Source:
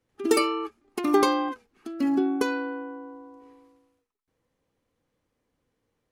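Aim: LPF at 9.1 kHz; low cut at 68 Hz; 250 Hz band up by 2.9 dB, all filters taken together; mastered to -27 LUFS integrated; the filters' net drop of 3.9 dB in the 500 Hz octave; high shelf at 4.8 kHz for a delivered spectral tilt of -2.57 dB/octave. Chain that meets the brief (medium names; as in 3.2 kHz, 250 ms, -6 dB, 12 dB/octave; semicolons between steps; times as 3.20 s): high-pass 68 Hz; low-pass 9.1 kHz; peaking EQ 250 Hz +6.5 dB; peaking EQ 500 Hz -8.5 dB; treble shelf 4.8 kHz +8 dB; trim -2 dB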